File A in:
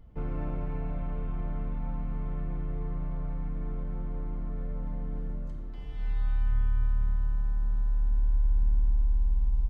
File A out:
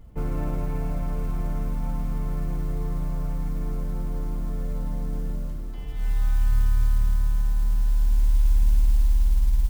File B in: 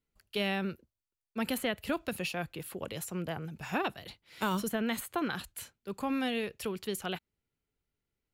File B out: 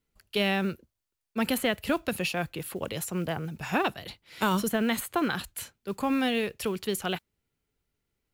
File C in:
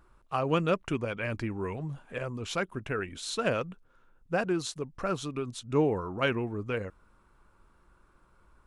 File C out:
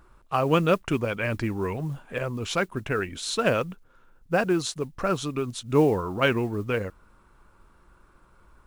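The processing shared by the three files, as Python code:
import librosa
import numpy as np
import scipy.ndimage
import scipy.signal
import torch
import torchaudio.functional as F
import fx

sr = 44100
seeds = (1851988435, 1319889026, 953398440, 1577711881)

y = fx.mod_noise(x, sr, seeds[0], snr_db=31)
y = F.gain(torch.from_numpy(y), 5.5).numpy()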